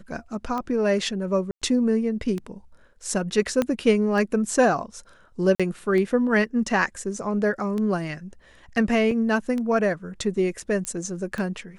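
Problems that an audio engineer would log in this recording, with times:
tick 33 1/3 rpm -18 dBFS
1.51–1.62 s: dropout 106 ms
3.62 s: pop -10 dBFS
5.55–5.60 s: dropout 46 ms
9.11 s: dropout 3.1 ms
10.85 s: pop -14 dBFS

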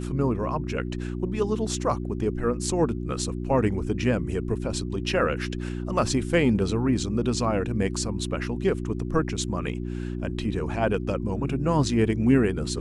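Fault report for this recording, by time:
hum 60 Hz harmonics 6 -31 dBFS

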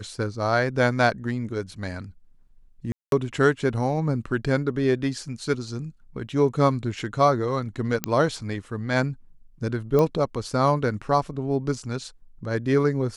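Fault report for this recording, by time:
2.92–3.12 s: dropout 202 ms
8.04 s: pop -7 dBFS
9.99 s: pop -11 dBFS

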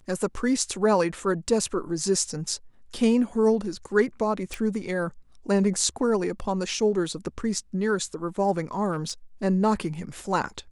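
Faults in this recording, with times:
4.54 s: pop
8.91–9.11 s: clipped -22.5 dBFS

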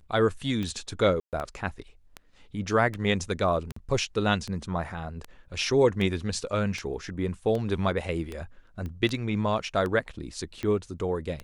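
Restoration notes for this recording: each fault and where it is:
tick 78 rpm -20 dBFS
1.20–1.33 s: dropout 128 ms
3.72–3.76 s: dropout 44 ms
8.86 s: pop -25 dBFS

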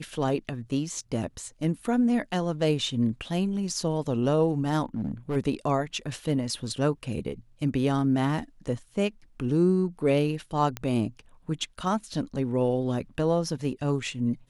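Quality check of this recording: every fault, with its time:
4.95–5.37 s: clipped -24.5 dBFS
10.77 s: pop -16 dBFS

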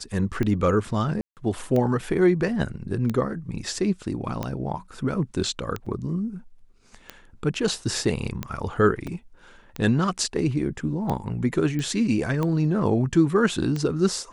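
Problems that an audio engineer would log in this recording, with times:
tick 45 rpm -15 dBFS
1.21–1.37 s: dropout 158 ms
5.86 s: dropout 4.6 ms
9.07 s: dropout 3.9 ms
11.79 s: pop -18 dBFS

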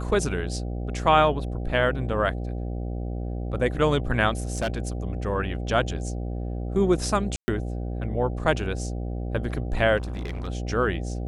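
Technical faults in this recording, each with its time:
buzz 60 Hz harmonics 13 -30 dBFS
4.53–4.88 s: clipped -21.5 dBFS
7.36–7.48 s: dropout 120 ms
9.97–10.48 s: clipped -28 dBFS

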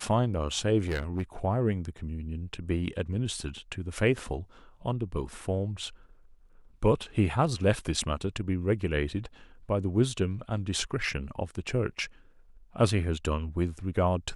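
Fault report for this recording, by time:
0.85–1.22 s: clipped -25.5 dBFS

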